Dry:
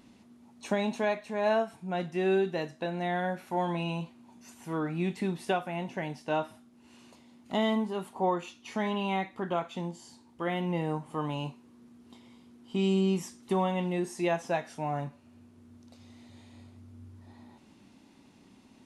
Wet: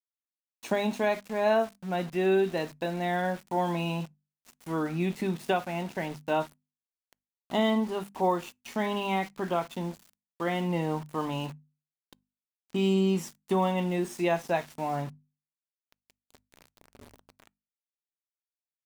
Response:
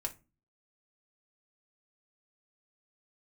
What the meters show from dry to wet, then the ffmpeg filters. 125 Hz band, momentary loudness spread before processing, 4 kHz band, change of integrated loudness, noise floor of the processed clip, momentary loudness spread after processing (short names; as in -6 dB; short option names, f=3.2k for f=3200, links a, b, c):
+1.5 dB, 10 LU, +2.0 dB, +2.0 dB, under -85 dBFS, 10 LU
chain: -filter_complex "[0:a]aeval=exprs='val(0)*gte(abs(val(0)),0.00631)':c=same,bandreject=f=50:t=h:w=6,bandreject=f=100:t=h:w=6,bandreject=f=150:t=h:w=6,bandreject=f=200:t=h:w=6,bandreject=f=250:t=h:w=6,asplit=2[a][b];[1:a]atrim=start_sample=2205,afade=t=out:st=0.16:d=0.01,atrim=end_sample=7497[c];[b][c]afir=irnorm=-1:irlink=0,volume=-21dB[d];[a][d]amix=inputs=2:normalize=0,volume=1.5dB"